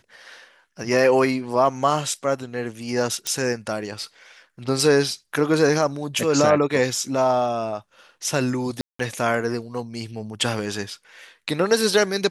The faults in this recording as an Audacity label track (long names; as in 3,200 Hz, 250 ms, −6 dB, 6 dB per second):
3.270000	3.270000	click −10 dBFS
8.810000	8.990000	drop-out 184 ms